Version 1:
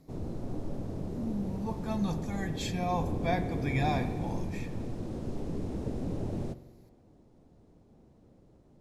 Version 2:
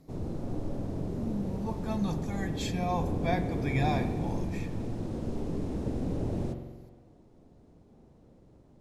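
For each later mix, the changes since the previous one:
background: send +10.0 dB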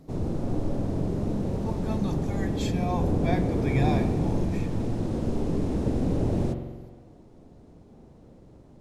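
background +6.5 dB

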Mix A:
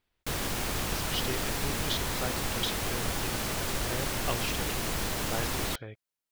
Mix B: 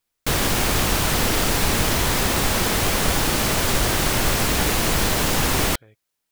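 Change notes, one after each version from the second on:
speech -9.5 dB; background +11.5 dB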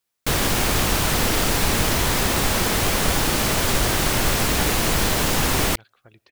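speech: entry +2.45 s

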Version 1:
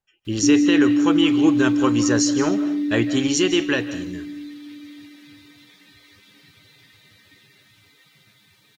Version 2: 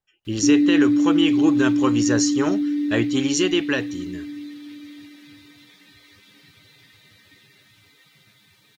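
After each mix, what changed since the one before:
reverb: off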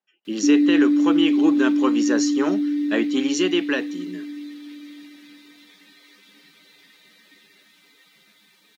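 speech: add air absorption 73 m; master: add steep high-pass 180 Hz 48 dB/oct

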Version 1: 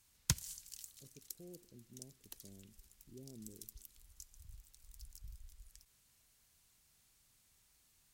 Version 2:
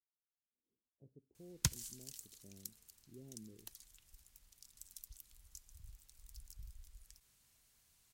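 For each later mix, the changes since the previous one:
background: entry +1.35 s; reverb: off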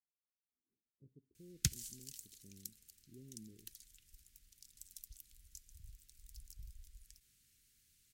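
master: add Butterworth band-stop 800 Hz, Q 0.62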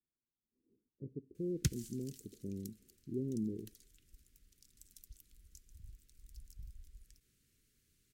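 background -11.5 dB; master: remove passive tone stack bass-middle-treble 5-5-5

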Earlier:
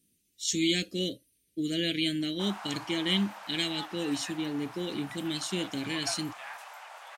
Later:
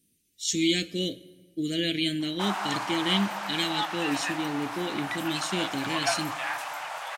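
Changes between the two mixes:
background +9.5 dB; reverb: on, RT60 1.5 s

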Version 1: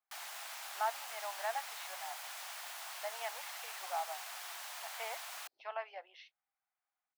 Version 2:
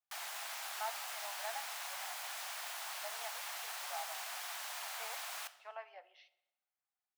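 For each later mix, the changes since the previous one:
speech -8.0 dB; reverb: on, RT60 0.90 s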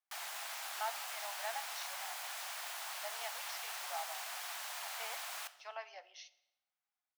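speech: remove air absorption 390 m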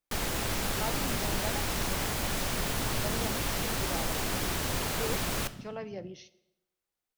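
background +9.0 dB; master: remove elliptic high-pass 710 Hz, stop band 70 dB

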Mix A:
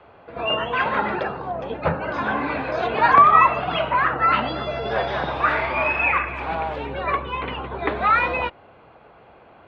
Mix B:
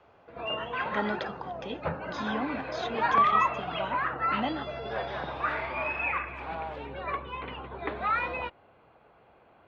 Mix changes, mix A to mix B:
speech: remove air absorption 83 m; background -10.0 dB

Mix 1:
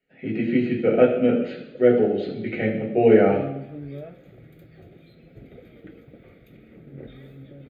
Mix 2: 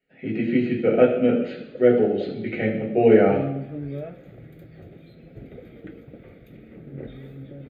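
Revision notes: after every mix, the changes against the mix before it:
first sound +4.0 dB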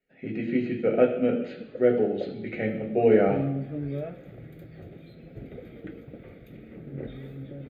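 speech: send -6.0 dB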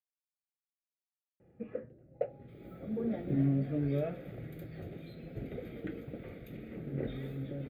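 speech: muted; master: add high shelf 9300 Hz +6.5 dB

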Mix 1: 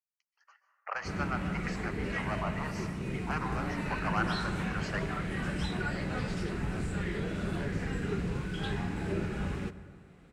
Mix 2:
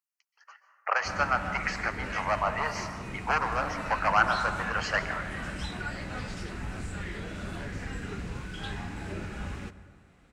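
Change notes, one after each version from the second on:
speech +9.5 dB; background: add fifteen-band EQ 160 Hz -8 dB, 400 Hz -7 dB, 6300 Hz +3 dB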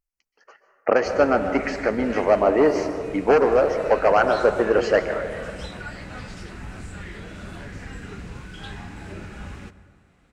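speech: remove Chebyshev high-pass 970 Hz, order 3

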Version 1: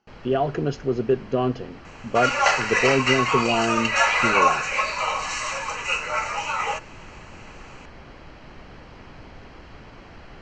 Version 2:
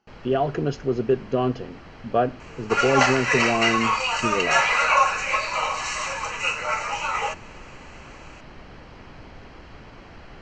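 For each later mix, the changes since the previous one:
second sound: entry +0.55 s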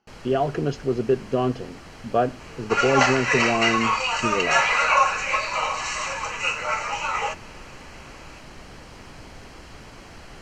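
first sound: remove air absorption 180 m

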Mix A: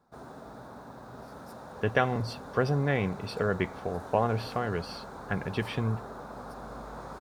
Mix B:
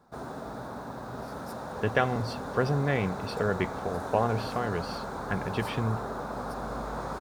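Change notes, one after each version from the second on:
background +7.0 dB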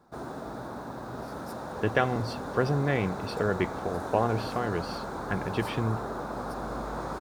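master: add bell 330 Hz +8 dB 0.2 oct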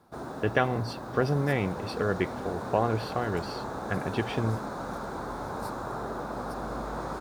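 speech: entry -1.40 s

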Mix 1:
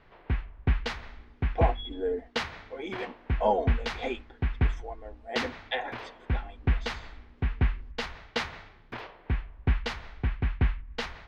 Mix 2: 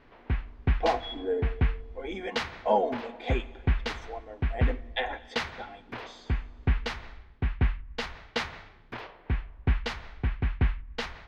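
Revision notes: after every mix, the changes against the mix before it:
speech: entry -0.75 s; reverb: on, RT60 2.0 s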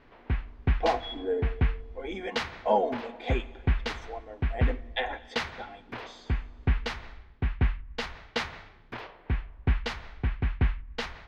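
none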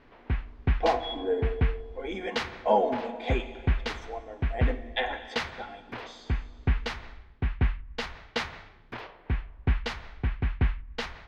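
speech: send +8.5 dB

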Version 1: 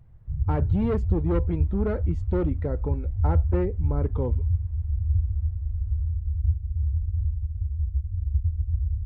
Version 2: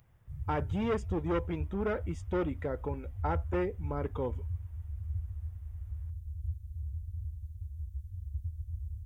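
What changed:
speech: add Butterworth band-stop 4200 Hz, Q 5; master: add tilt +3.5 dB/oct

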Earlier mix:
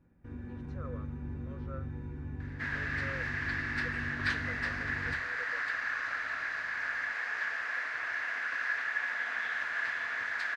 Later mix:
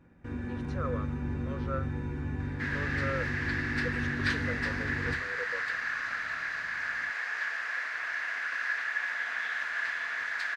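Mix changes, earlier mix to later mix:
speech +11.0 dB; first sound +10.5 dB; master: add tilt +1.5 dB/oct

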